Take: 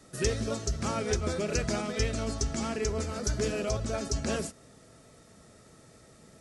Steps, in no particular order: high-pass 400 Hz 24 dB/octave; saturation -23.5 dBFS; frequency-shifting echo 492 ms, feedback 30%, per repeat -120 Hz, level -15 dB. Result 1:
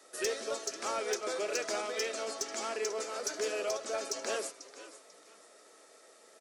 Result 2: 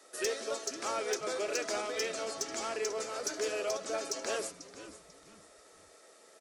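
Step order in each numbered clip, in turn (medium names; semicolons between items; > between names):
frequency-shifting echo > high-pass > saturation; high-pass > frequency-shifting echo > saturation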